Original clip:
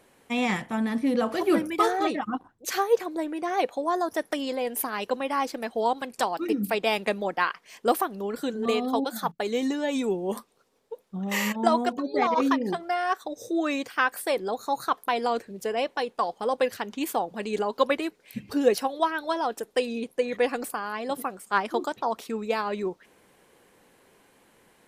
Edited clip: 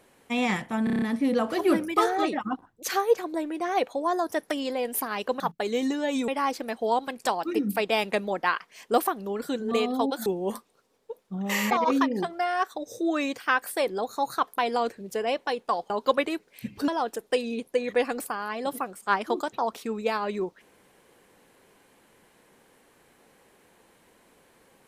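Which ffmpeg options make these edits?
-filter_complex "[0:a]asplit=13[a][b][c][d][e][f][g][h][i][j][k][l][m];[a]atrim=end=0.872[n];[b]atrim=start=0.838:end=0.872[o];[c]atrim=start=0.838:end=0.872[p];[d]atrim=start=0.838:end=0.872[q];[e]atrim=start=0.838:end=0.872[r];[f]atrim=start=0.838:end=0.872[s];[g]atrim=start=0.838:end=5.222[t];[h]atrim=start=9.198:end=10.082[u];[i]atrim=start=5.218:end=9.202[v];[j]atrim=start=10.078:end=11.532[w];[k]atrim=start=12.208:end=16.402[x];[l]atrim=start=17.618:end=18.602[y];[m]atrim=start=19.318[z];[n][o]acrossfade=d=0.004:c1=hsin:c2=hsin[aa];[aa][p]acrossfade=d=0.004:c1=hsin:c2=hsin[ab];[ab][q]acrossfade=d=0.004:c1=hsin:c2=hsin[ac];[ac][r]acrossfade=d=0.004:c1=hsin:c2=hsin[ad];[ad][s]acrossfade=d=0.004:c1=hsin:c2=hsin[ae];[ae][t]acrossfade=d=0.004:c1=hsin:c2=hsin[af];[af][u]acrossfade=d=0.004:c1=hsin:c2=hsin[ag];[ag][v]acrossfade=d=0.004:c1=hsin:c2=hsin[ah];[ah][w]acrossfade=d=0.004:c1=hsin:c2=hsin[ai];[ai][x]acrossfade=d=0.004:c1=hsin:c2=hsin[aj];[aj][y]acrossfade=d=0.004:c1=hsin:c2=hsin[ak];[ak][z]acrossfade=d=0.004:c1=hsin:c2=hsin"

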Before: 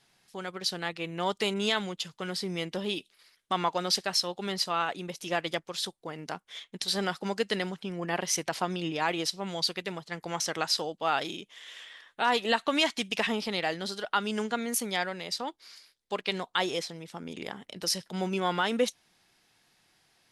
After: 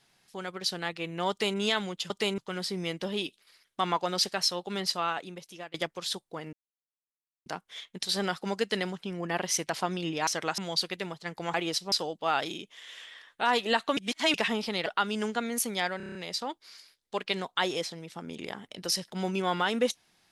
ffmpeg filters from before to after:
-filter_complex "[0:a]asplit=18[a][b][c][d][e][f][g][h][i][j][k][l][m][n][o][p][q][r];[a]atrim=end=2.102[s];[b]atrim=start=1.298:end=1.582[t];[c]atrim=start=2.098:end=5.46,asetpts=PTS-STARTPTS,afade=t=out:st=2.572:d=0.79:silence=0.105925[u];[d]atrim=start=5.46:end=6.25,asetpts=PTS-STARTPTS,afade=t=in:d=0.004:c=hsin:silence=0.105925,afade=t=out:st=0.786:d=0.004:c=hsin,apad=pad_dur=0.93[v];[e]atrim=start=6.25:end=9.062,asetpts=PTS-STARTPTS,afade=t=in:d=0.004:c=hsin[w];[f]atrim=start=10.398:end=10.712[x];[g]atrim=start=9.438:end=10.402[y];[h]atrim=start=9.058:end=9.442[z];[i]atrim=start=10.708:end=12.762[aa];[j]atrim=start=12.758:end=13.132,asetpts=PTS-STARTPTS,areverse[ab];[k]atrim=start=13.128:end=13.652[ac];[l]atrim=start=14.018:end=15.162[ad];[m]atrim=start=15.128:end=15.162[ae];[n]atrim=start=15.128:end=15.162[af];[o]atrim=start=15.128:end=15.162[ag];[p]atrim=start=15.128:end=15.162[ah];[q]atrim=start=15.128:end=15.162[ai];[r]atrim=start=15.128[aj];[s][t]acrossfade=d=0.004:c1=hsin:c2=hsin[ak];[u][v][w]concat=n=3:v=0:a=1[al];[ak][al]acrossfade=d=0.004:c1=hsin:c2=hsin[am];[am][x]acrossfade=d=0.004:c1=hsin:c2=hsin[an];[an][y]acrossfade=d=0.004:c1=hsin:c2=hsin[ao];[ao][z]acrossfade=d=0.004:c1=hsin:c2=hsin[ap];[ap][aa]acrossfade=d=0.004:c1=hsin:c2=hsin[aq];[aq][ab]acrossfade=d=0.004:c1=hsin:c2=hsin[ar];[ar][ac]acrossfade=d=0.004:c1=hsin:c2=hsin[as];[as][ad]acrossfade=d=0.004:c1=hsin:c2=hsin[at];[at][ae]acrossfade=d=0.004:c1=hsin:c2=hsin[au];[au][af]acrossfade=d=0.004:c1=hsin:c2=hsin[av];[av][ag]acrossfade=d=0.004:c1=hsin:c2=hsin[aw];[aw][ah]acrossfade=d=0.004:c1=hsin:c2=hsin[ax];[ax][ai]acrossfade=d=0.004:c1=hsin:c2=hsin[ay];[ay][aj]acrossfade=d=0.004:c1=hsin:c2=hsin"

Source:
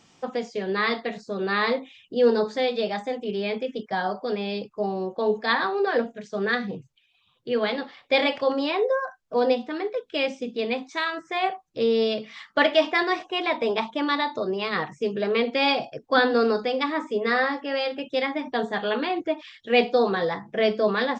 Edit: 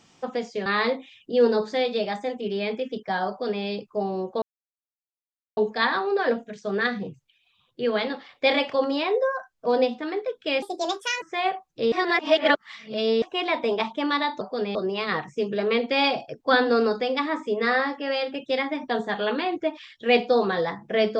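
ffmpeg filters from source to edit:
-filter_complex "[0:a]asplit=9[a][b][c][d][e][f][g][h][i];[a]atrim=end=0.662[j];[b]atrim=start=1.488:end=5.25,asetpts=PTS-STARTPTS,afade=t=out:st=3.758:d=0.004:c=hsin,apad=pad_dur=1.15[k];[c]atrim=start=5.25:end=10.304,asetpts=PTS-STARTPTS,afade=t=in:d=0.004:c=hsin[l];[d]atrim=start=10.3:end=11.2,asetpts=PTS-STARTPTS,asetrate=66150,aresample=44100[m];[e]atrim=start=11.196:end=11.902[n];[f]atrim=start=11.898:end=13.202,asetpts=PTS-STARTPTS,areverse[o];[g]atrim=start=13.198:end=14.392[p];[h]atrim=start=4.118:end=4.462[q];[i]atrim=start=14.388[r];[k][l]concat=n=2:v=0:a=1[s];[j][s]acrossfade=d=0.004:c1=hsin:c2=hsin[t];[t][m]acrossfade=d=0.004:c1=hsin:c2=hsin[u];[u][n]acrossfade=d=0.004:c1=hsin:c2=hsin[v];[v][o]acrossfade=d=0.004:c1=hsin:c2=hsin[w];[w][p]acrossfade=d=0.004:c1=hsin:c2=hsin[x];[x][q]acrossfade=d=0.004:c1=hsin:c2=hsin[y];[y][r]acrossfade=d=0.004:c1=hsin:c2=hsin"

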